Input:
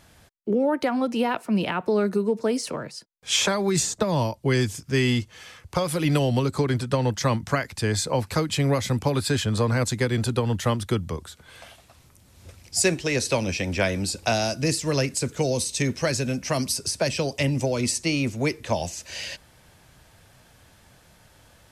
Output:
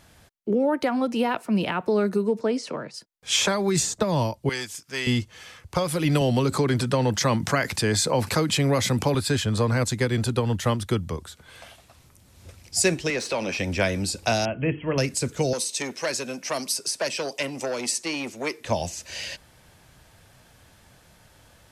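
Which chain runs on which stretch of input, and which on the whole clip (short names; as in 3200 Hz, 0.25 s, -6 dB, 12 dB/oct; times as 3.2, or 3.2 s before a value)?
2.41–2.94 HPF 150 Hz + air absorption 86 m
4.49–5.07 HPF 1100 Hz 6 dB/oct + core saturation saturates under 1100 Hz
6.21–9.15 HPF 120 Hz + fast leveller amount 50%
13.1–13.59 HPF 160 Hz + compressor 2.5:1, threshold -25 dBFS + overdrive pedal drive 13 dB, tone 2100 Hz, clips at -15 dBFS
14.45–14.98 brick-wall FIR low-pass 3300 Hz + notches 50/100/150/200/250/300/350/400/450 Hz
15.53–18.65 HPF 340 Hz + core saturation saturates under 1300 Hz
whole clip: dry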